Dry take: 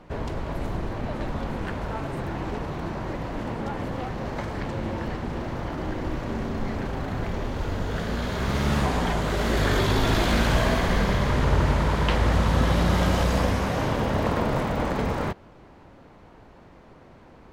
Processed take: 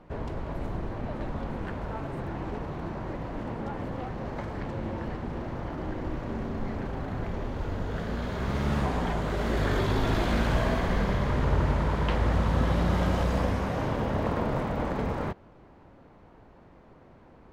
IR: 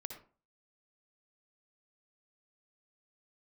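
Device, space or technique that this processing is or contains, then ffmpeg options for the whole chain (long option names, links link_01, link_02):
behind a face mask: -af "highshelf=frequency=2600:gain=-8,volume=-3.5dB"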